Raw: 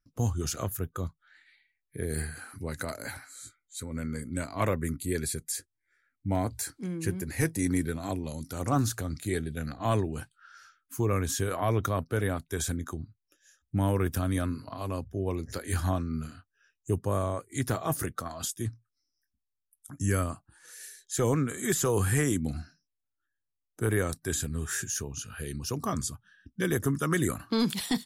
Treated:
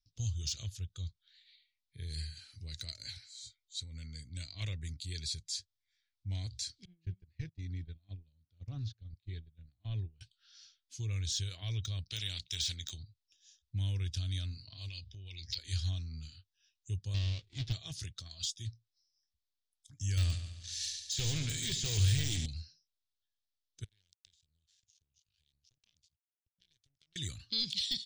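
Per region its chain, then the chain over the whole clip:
6.85–10.21 gate -32 dBFS, range -23 dB + tape spacing loss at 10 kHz 42 dB
12.1–13.03 HPF 43 Hz 6 dB/oct + high shelf 3600 Hz -7.5 dB + spectral compressor 2:1
14.88–15.58 band shelf 3100 Hz +13.5 dB + compressor 12:1, threshold -34 dBFS
17.14–17.73 half-waves squared off + LPF 1200 Hz 6 dB/oct
20.17–22.46 sample leveller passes 3 + multi-head echo 71 ms, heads first and second, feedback 51%, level -13.5 dB
23.84–27.16 compressor 5:1, threshold -44 dBFS + power-law curve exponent 3
whole clip: LPF 5300 Hz 24 dB/oct; de-esser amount 95%; EQ curve 100 Hz 0 dB, 240 Hz -19 dB, 1200 Hz -26 dB, 3500 Hz +11 dB; gain -4.5 dB

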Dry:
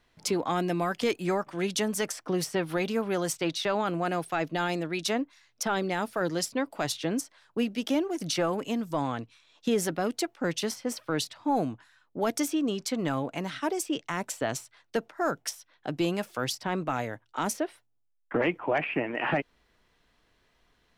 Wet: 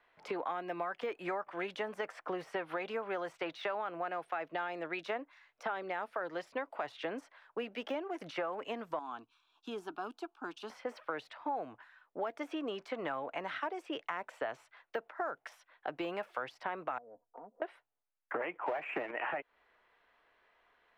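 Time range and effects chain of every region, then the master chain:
8.99–10.7 bell 630 Hz -8.5 dB 1.7 oct + fixed phaser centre 530 Hz, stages 6
16.98–17.62 inverse Chebyshev low-pass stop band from 2200 Hz, stop band 60 dB + comb 4.2 ms, depth 60% + compressor, threshold -45 dBFS
18.66–19.11 transient shaper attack +6 dB, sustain -9 dB + power-law curve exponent 0.7 + three-band squash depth 40%
whole clip: de-esser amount 95%; three-band isolator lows -21 dB, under 460 Hz, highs -23 dB, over 2700 Hz; compressor, threshold -37 dBFS; gain +3 dB

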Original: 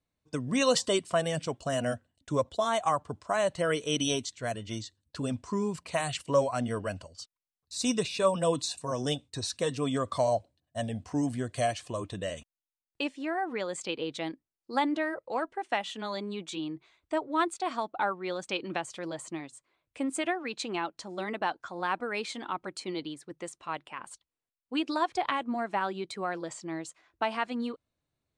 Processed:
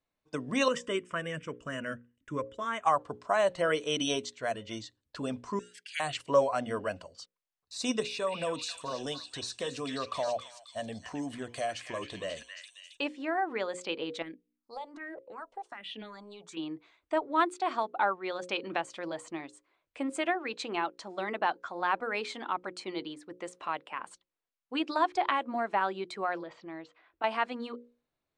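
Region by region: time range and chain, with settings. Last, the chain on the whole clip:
0.68–2.85 LPF 7100 Hz + fixed phaser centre 1800 Hz, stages 4
5.59–6 steep high-pass 1200 Hz 96 dB/oct + frequency shift +370 Hz + short-mantissa float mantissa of 6-bit
8–13.01 high shelf 4500 Hz +5 dB + compressor 2:1, threshold -34 dBFS + delay with a stepping band-pass 0.269 s, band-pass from 2100 Hz, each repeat 0.7 oct, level -1 dB
14.22–16.57 notches 60/120/180/240/300 Hz + compressor 12:1, threshold -34 dBFS + phaser stages 4, 1.3 Hz, lowest notch 270–1300 Hz
23.54–24.1 HPF 59 Hz + three-band squash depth 40%
26.43–27.24 LPF 4000 Hz 24 dB/oct + compressor 2:1, threshold -42 dBFS
whole clip: LPF 2700 Hz 6 dB/oct; bell 92 Hz -12 dB 2.7 oct; notches 60/120/180/240/300/360/420/480/540 Hz; gain +3 dB

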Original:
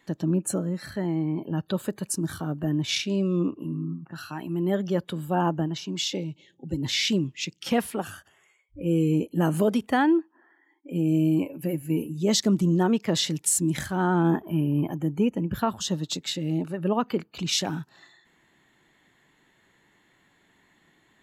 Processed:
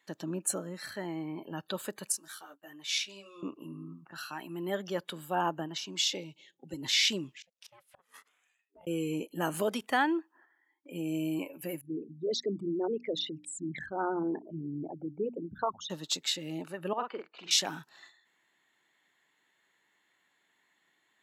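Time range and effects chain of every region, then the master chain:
2.12–3.43 HPF 1500 Hz 6 dB/oct + expander -44 dBFS + ensemble effect
7.37–8.87 flipped gate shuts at -23 dBFS, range -27 dB + compressor 8:1, threshold -43 dBFS + ring modulator 350 Hz
11.81–15.9 formant sharpening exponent 3 + tape spacing loss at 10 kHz 23 dB + notches 60/120/180/240/300 Hz
16.93–17.51 HPF 400 Hz + tape spacing loss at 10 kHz 33 dB + doubler 46 ms -5 dB
whole clip: gate -54 dBFS, range -7 dB; HPF 940 Hz 6 dB/oct

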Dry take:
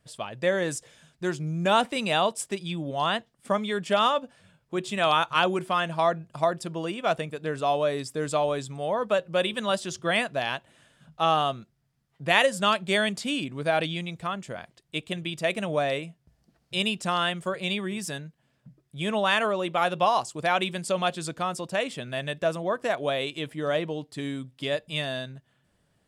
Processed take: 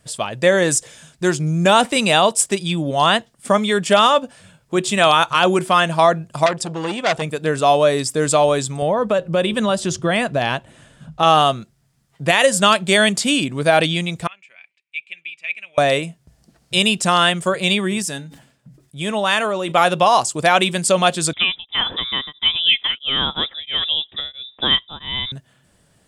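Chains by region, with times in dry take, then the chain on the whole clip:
6.46–7.22 LPF 8500 Hz + core saturation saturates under 2300 Hz
8.82–11.23 tilt -2 dB/oct + compressor 3:1, threshold -25 dBFS
14.27–15.78 band-pass 2400 Hz, Q 13 + comb 5.2 ms, depth 38%
18.02–19.72 resonator 280 Hz, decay 0.27 s, harmonics odd, mix 50% + sustainer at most 98 dB/s
21.33–25.32 inverted band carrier 3700 Hz + beating tremolo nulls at 1.5 Hz
whole clip: bell 8100 Hz +7 dB 1.2 oct; maximiser +12.5 dB; gain -2 dB

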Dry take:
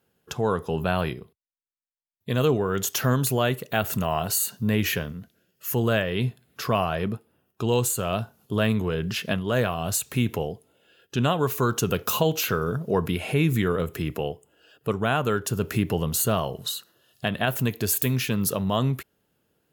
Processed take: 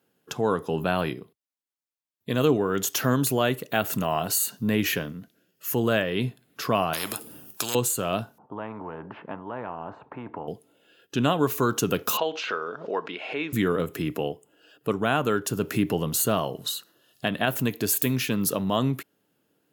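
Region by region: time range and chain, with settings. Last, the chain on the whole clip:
6.93–7.75 tone controls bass +7 dB, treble +14 dB + spectral compressor 4:1
8.38–10.48 ladder low-pass 960 Hz, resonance 80% + spectral compressor 2:1
12.17–13.53 BPF 570–5300 Hz + air absorption 130 m + backwards sustainer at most 110 dB/s
whole clip: HPF 140 Hz 12 dB/oct; bell 290 Hz +7 dB 0.24 oct

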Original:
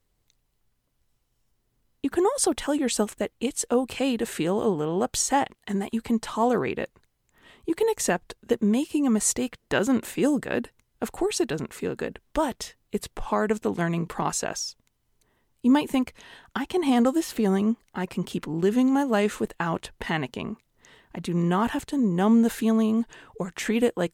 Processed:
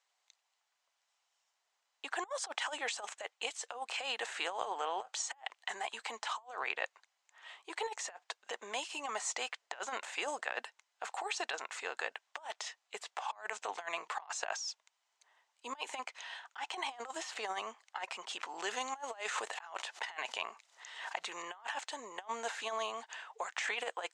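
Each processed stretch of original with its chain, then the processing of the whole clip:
18.39–21.42 high shelf 4100 Hz +6.5 dB + backwards sustainer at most 82 dB/s
whole clip: de-esser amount 90%; elliptic band-pass 740–7300 Hz, stop band 70 dB; negative-ratio compressor -37 dBFS, ratio -0.5; gain -1.5 dB

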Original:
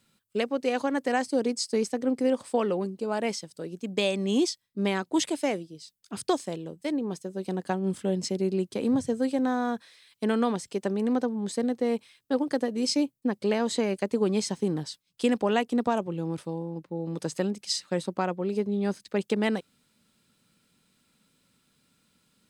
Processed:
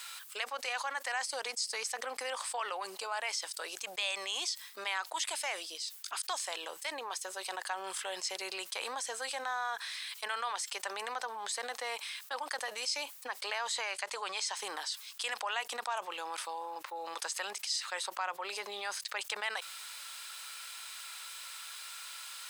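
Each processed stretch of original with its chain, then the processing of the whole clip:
13.83–14.57 LPF 9200 Hz + resonant low shelf 170 Hz +11 dB, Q 3
whole clip: HPF 910 Hz 24 dB/oct; fast leveller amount 70%; gain -6.5 dB

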